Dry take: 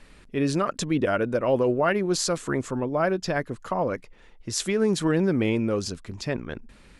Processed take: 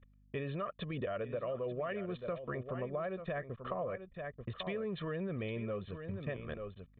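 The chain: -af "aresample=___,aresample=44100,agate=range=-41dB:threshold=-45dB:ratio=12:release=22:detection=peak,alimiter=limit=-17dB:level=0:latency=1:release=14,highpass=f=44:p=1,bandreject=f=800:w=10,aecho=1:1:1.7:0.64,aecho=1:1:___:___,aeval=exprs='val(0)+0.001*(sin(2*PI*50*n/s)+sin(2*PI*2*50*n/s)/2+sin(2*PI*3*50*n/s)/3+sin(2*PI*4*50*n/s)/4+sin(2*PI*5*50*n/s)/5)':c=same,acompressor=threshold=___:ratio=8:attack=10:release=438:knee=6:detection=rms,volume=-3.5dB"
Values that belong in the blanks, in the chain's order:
8000, 888, 0.251, -30dB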